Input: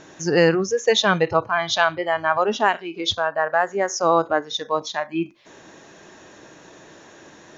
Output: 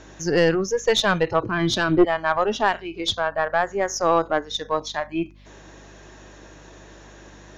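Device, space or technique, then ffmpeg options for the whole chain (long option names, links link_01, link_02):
valve amplifier with mains hum: -filter_complex "[0:a]asettb=1/sr,asplit=3[link_01][link_02][link_03];[link_01]atrim=end=1.434[link_04];[link_02]atrim=start=1.43:end=2.05,asetpts=PTS-STARTPTS,afade=type=in:duration=0.004:curve=qsin,afade=type=out:start_time=0.616:duration=0.004:curve=qsin,lowshelf=frequency=500:width_type=q:width=3:gain=12.5[link_05];[link_03]atrim=start=2.046[link_06];[link_04][link_05]acrossfade=duration=0.004:curve1=hsin:curve2=qsin[link_07];[link_07][link_06]acrossfade=duration=0.004:curve1=qsin:curve2=hsin,aeval=exprs='(tanh(2.51*val(0)+0.35)-tanh(0.35))/2.51':channel_layout=same,aeval=exprs='val(0)+0.00398*(sin(2*PI*50*n/s)+sin(2*PI*2*50*n/s)/2+sin(2*PI*3*50*n/s)/3+sin(2*PI*4*50*n/s)/4+sin(2*PI*5*50*n/s)/5)':channel_layout=same"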